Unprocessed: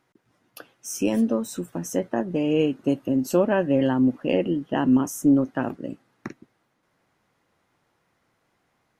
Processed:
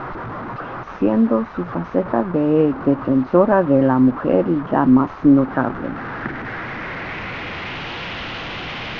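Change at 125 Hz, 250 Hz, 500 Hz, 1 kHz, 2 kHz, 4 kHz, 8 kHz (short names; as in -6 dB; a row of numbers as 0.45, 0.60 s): +7.5 dB, +6.0 dB, +6.5 dB, +11.0 dB, +10.5 dB, n/a, under -15 dB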